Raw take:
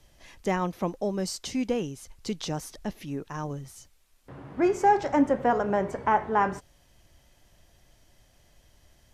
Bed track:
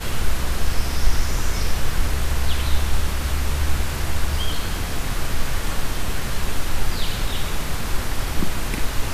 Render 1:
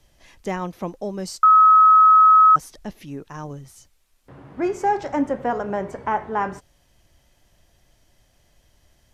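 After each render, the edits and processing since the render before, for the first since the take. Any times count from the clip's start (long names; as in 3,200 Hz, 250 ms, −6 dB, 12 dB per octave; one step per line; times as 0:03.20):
0:01.43–0:02.56: beep over 1,280 Hz −8.5 dBFS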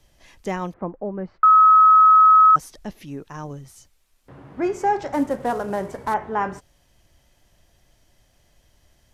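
0:00.72–0:02.51: low-pass filter 1,500 Hz → 3,100 Hz 24 dB per octave
0:05.13–0:06.14: variable-slope delta modulation 64 kbit/s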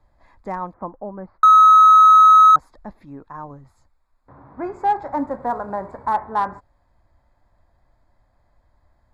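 adaptive Wiener filter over 15 samples
graphic EQ with 15 bands 160 Hz −7 dB, 400 Hz −7 dB, 1,000 Hz +7 dB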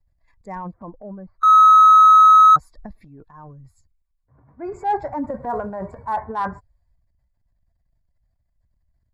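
spectral dynamics exaggerated over time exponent 1.5
transient designer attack −4 dB, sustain +10 dB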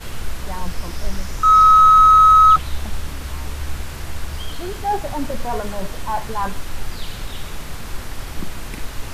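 mix in bed track −5.5 dB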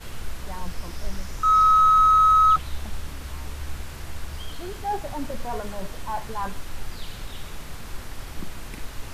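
level −6.5 dB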